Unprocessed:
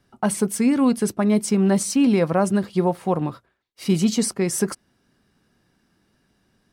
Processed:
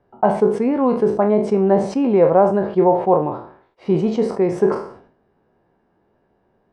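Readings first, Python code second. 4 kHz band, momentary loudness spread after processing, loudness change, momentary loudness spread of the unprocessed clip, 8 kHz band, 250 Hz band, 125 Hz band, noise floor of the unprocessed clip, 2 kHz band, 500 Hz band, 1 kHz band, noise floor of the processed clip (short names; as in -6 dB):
under -10 dB, 6 LU, +3.5 dB, 7 LU, under -20 dB, 0.0 dB, -0.5 dB, -67 dBFS, -2.5 dB, +9.0 dB, +8.5 dB, -64 dBFS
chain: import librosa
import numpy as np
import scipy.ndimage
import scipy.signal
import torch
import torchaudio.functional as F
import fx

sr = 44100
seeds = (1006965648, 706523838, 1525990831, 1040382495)

y = fx.spec_trails(x, sr, decay_s=0.36)
y = scipy.signal.sosfilt(scipy.signal.butter(2, 1800.0, 'lowpass', fs=sr, output='sos'), y)
y = fx.band_shelf(y, sr, hz=600.0, db=10.0, octaves=1.7)
y = fx.sustainer(y, sr, db_per_s=100.0)
y = y * 10.0 ** (-2.5 / 20.0)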